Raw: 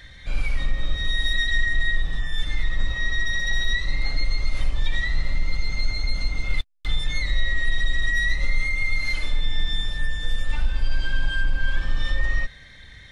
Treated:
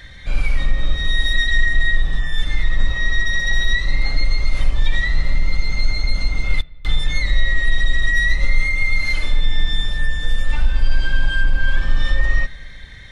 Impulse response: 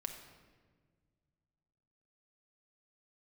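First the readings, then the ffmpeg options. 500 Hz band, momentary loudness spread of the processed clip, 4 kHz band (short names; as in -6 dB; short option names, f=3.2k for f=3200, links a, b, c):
+5.5 dB, 6 LU, +3.5 dB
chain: -filter_complex "[0:a]asplit=2[a][b];[1:a]atrim=start_sample=2205,lowpass=2.9k[c];[b][c]afir=irnorm=-1:irlink=0,volume=-11.5dB[d];[a][d]amix=inputs=2:normalize=0,volume=4dB"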